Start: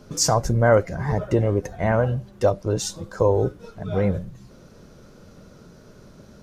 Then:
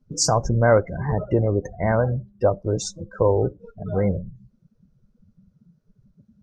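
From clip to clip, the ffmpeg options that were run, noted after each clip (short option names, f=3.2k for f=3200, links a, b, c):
-af "afftdn=nr=30:nf=-32"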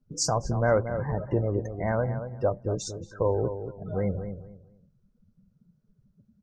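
-filter_complex "[0:a]asplit=2[a][b];[b]adelay=229,lowpass=f=1.5k:p=1,volume=-9dB,asplit=2[c][d];[d]adelay=229,lowpass=f=1.5k:p=1,volume=0.25,asplit=2[e][f];[f]adelay=229,lowpass=f=1.5k:p=1,volume=0.25[g];[a][c][e][g]amix=inputs=4:normalize=0,volume=-6.5dB"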